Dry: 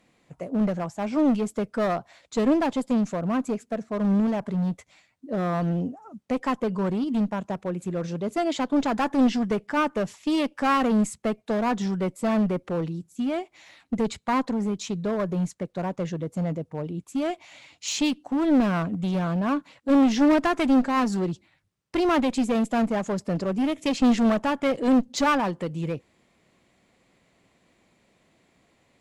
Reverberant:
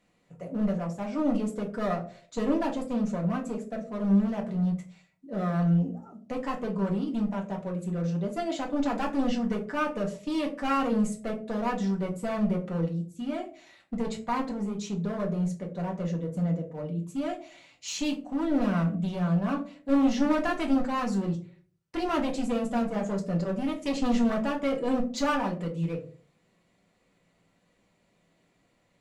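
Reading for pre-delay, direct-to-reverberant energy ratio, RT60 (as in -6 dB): 4 ms, -0.5 dB, 0.45 s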